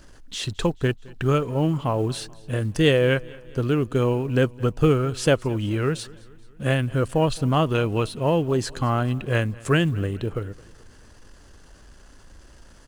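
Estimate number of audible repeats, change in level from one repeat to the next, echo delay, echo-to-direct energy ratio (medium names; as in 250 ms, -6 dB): 3, -5.5 dB, 216 ms, -21.5 dB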